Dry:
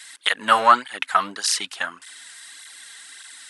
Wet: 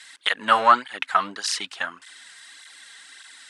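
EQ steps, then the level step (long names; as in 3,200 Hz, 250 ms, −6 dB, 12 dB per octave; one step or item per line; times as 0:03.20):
high-frequency loss of the air 54 metres
−1.0 dB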